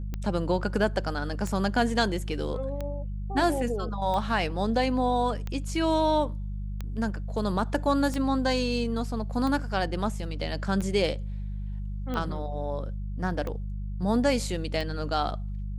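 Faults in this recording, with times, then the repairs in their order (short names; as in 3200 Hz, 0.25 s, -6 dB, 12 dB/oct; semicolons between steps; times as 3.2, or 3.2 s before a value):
hum 50 Hz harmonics 4 -33 dBFS
tick 45 rpm -20 dBFS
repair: de-click; de-hum 50 Hz, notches 4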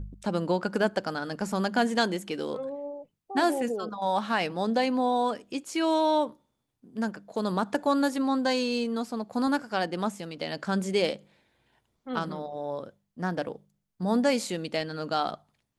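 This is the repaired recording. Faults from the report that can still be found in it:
none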